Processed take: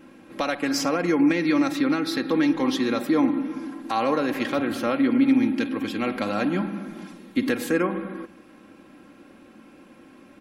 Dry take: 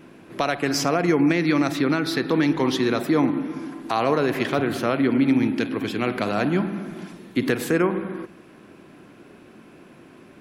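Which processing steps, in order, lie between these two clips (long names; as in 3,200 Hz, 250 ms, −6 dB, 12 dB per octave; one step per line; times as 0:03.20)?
comb filter 3.7 ms, depth 62%
level −3.5 dB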